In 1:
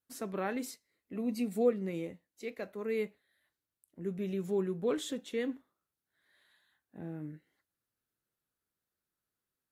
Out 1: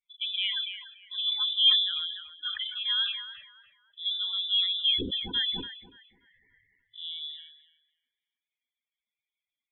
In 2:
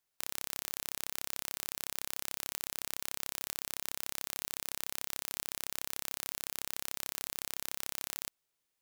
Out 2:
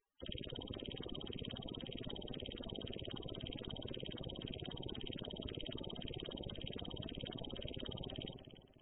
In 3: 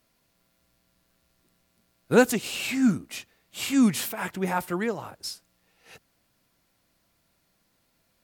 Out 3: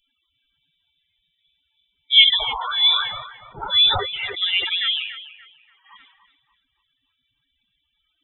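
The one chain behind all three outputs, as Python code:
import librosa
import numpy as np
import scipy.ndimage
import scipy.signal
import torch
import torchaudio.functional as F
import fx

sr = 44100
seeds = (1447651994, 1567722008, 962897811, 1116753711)

y = fx.low_shelf(x, sr, hz=150.0, db=-11.5)
y = fx.cheby_harmonics(y, sr, harmonics=(2,), levels_db=(-26,), full_scale_db=-7.5)
y = np.repeat(y[::2], 2)[:len(y)]
y = fx.spec_topn(y, sr, count=16)
y = fx.echo_thinned(y, sr, ms=289, feedback_pct=38, hz=770.0, wet_db=-10.0)
y = fx.freq_invert(y, sr, carrier_hz=3700)
y = fx.low_shelf(y, sr, hz=350.0, db=5.0)
y = fx.sustainer(y, sr, db_per_s=65.0)
y = y * librosa.db_to_amplitude(6.5)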